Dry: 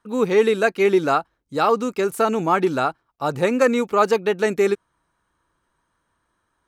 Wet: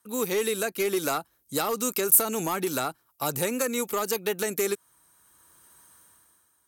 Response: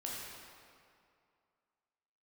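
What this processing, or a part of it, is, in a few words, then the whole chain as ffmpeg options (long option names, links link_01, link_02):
FM broadcast chain: -filter_complex "[0:a]highpass=61,dynaudnorm=framelen=130:gausssize=11:maxgain=15dB,acrossover=split=420|1600[link_01][link_02][link_03];[link_01]acompressor=threshold=-23dB:ratio=4[link_04];[link_02]acompressor=threshold=-21dB:ratio=4[link_05];[link_03]acompressor=threshold=-30dB:ratio=4[link_06];[link_04][link_05][link_06]amix=inputs=3:normalize=0,aemphasis=mode=production:type=50fm,alimiter=limit=-10dB:level=0:latency=1:release=257,asoftclip=type=hard:threshold=-14dB,lowpass=frequency=15000:width=0.5412,lowpass=frequency=15000:width=1.3066,aemphasis=mode=production:type=50fm,volume=-6.5dB"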